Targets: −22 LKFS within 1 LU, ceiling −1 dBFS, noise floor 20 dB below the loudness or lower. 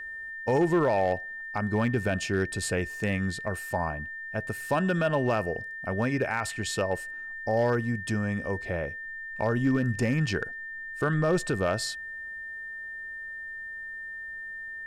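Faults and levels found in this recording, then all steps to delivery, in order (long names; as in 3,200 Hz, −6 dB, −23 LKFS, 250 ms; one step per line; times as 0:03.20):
share of clipped samples 0.3%; peaks flattened at −17.5 dBFS; interfering tone 1,800 Hz; level of the tone −36 dBFS; integrated loudness −29.5 LKFS; sample peak −17.5 dBFS; target loudness −22.0 LKFS
→ clipped peaks rebuilt −17.5 dBFS
notch filter 1,800 Hz, Q 30
level +7.5 dB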